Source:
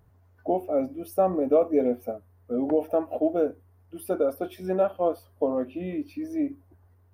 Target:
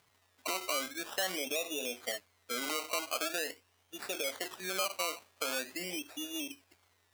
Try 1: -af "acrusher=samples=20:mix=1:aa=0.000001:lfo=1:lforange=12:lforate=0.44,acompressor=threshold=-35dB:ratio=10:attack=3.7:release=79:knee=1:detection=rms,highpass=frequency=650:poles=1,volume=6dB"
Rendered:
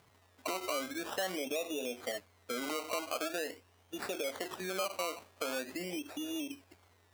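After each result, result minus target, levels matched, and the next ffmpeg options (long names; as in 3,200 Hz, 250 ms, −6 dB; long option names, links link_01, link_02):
downward compressor: peak gain reduction +6 dB; 500 Hz band +4.0 dB
-af "acrusher=samples=20:mix=1:aa=0.000001:lfo=1:lforange=12:lforate=0.44,acompressor=threshold=-28.5dB:ratio=10:attack=3.7:release=79:knee=1:detection=rms,highpass=frequency=650:poles=1,volume=6dB"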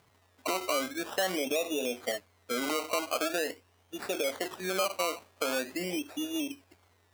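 500 Hz band +4.0 dB
-af "acrusher=samples=20:mix=1:aa=0.000001:lfo=1:lforange=12:lforate=0.44,acompressor=threshold=-28.5dB:ratio=10:attack=3.7:release=79:knee=1:detection=rms,highpass=frequency=1900:poles=1,volume=6dB"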